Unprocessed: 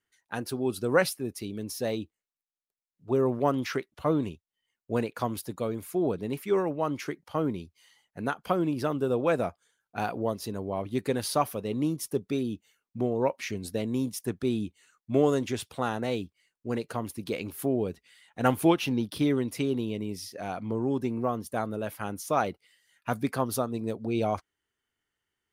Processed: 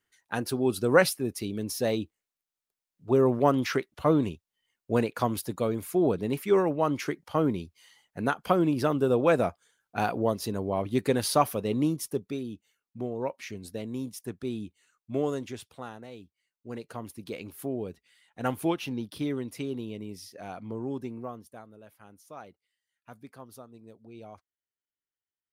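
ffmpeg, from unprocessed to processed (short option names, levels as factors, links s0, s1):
-af "volume=4.47,afade=t=out:st=11.72:d=0.68:silence=0.375837,afade=t=out:st=15.28:d=0.83:silence=0.316228,afade=t=in:st=16.11:d=0.94:silence=0.316228,afade=t=out:st=20.92:d=0.73:silence=0.223872"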